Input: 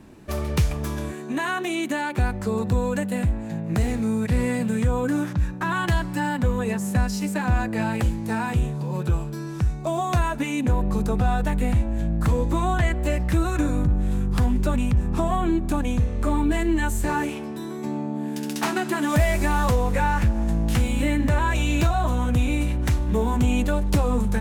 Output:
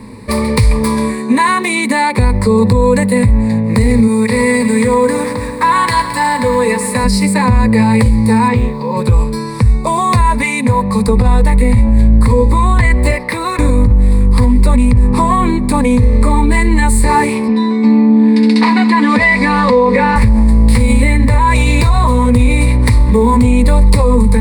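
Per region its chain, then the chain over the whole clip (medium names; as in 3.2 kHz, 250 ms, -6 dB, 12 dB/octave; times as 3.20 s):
4.07–7.04 s: high-pass 590 Hz 6 dB/octave + bit-crushed delay 109 ms, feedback 80%, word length 9-bit, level -12 dB
8.48–8.97 s: low-pass 4.1 kHz + bass shelf 180 Hz -8.5 dB + short-mantissa float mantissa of 6-bit
10.39–11.08 s: high-pass 97 Hz 24 dB/octave + peaking EQ 340 Hz -10.5 dB 1.1 oct
13.11–13.59 s: high-pass 360 Hz + peaking EQ 7.6 kHz -8 dB 0.89 oct
17.48–20.16 s: Chebyshev band-pass 200–3600 Hz + comb 4.1 ms, depth 73%
whole clip: rippled EQ curve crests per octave 0.94, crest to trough 16 dB; loudness maximiser +13.5 dB; trim -1 dB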